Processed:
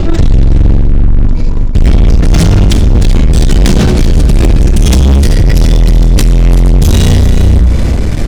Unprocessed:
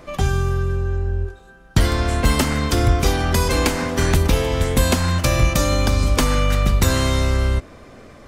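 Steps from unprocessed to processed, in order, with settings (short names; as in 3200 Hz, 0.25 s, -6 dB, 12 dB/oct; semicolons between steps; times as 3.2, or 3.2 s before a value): gliding pitch shift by -10 st ending unshifted; passive tone stack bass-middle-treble 10-0-1; notches 60/120/180 Hz; reverse; compressor, threshold -32 dBFS, peak gain reduction 14 dB; reverse; sample leveller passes 5; on a send: echo 0.383 s -12.5 dB; on the sum: maximiser +33 dB; gain -1 dB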